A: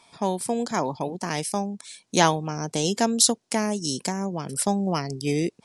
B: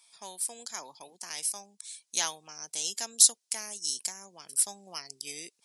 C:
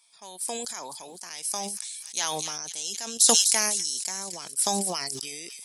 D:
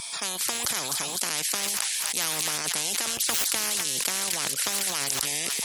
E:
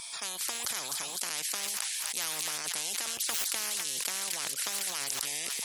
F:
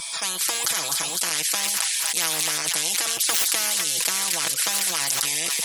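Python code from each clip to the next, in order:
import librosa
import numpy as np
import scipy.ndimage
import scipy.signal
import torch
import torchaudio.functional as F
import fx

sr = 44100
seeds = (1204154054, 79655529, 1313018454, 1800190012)

y1 = np.diff(x, prepend=0.0)
y2 = fx.echo_wet_highpass(y1, sr, ms=253, feedback_pct=57, hz=2400.0, wet_db=-18.0)
y2 = fx.sustainer(y2, sr, db_per_s=21.0)
y2 = y2 * 10.0 ** (-1.0 / 20.0)
y3 = scipy.signal.sosfilt(scipy.signal.butter(2, 75.0, 'highpass', fs=sr, output='sos'), y2)
y3 = fx.spectral_comp(y3, sr, ratio=10.0)
y3 = y3 * 10.0 ** (-4.0 / 20.0)
y4 = fx.low_shelf(y3, sr, hz=360.0, db=-7.5)
y4 = y4 * 10.0 ** (-6.0 / 20.0)
y5 = y4 + 0.65 * np.pad(y4, (int(6.1 * sr / 1000.0), 0))[:len(y4)]
y5 = y5 * 10.0 ** (8.5 / 20.0)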